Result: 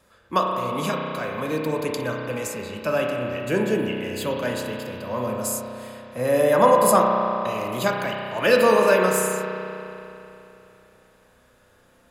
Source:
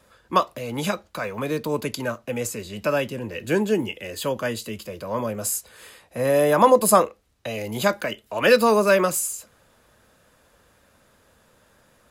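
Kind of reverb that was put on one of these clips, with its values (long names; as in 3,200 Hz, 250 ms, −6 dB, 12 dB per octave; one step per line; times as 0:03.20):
spring reverb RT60 3.1 s, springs 32 ms, chirp 30 ms, DRR 0 dB
level −2.5 dB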